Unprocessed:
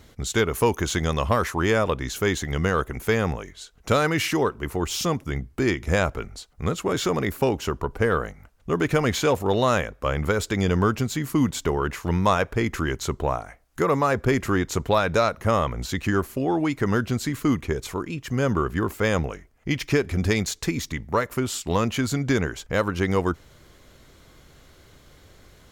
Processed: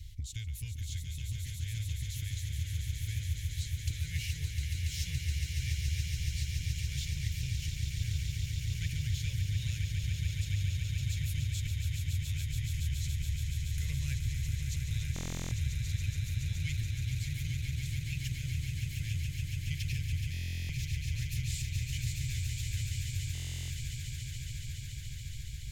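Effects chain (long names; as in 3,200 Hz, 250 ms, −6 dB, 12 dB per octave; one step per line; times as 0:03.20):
inverse Chebyshev band-stop filter 200–1,300 Hz, stop band 40 dB
low-shelf EQ 440 Hz +11.5 dB
downward compressor 6 to 1, threshold −35 dBFS, peak gain reduction 21 dB
on a send: echo that builds up and dies away 141 ms, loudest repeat 8, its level −7 dB
on the sum: buffer that repeats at 0:15.14/0:20.32/0:23.33, samples 1,024, times 15
level −2.5 dB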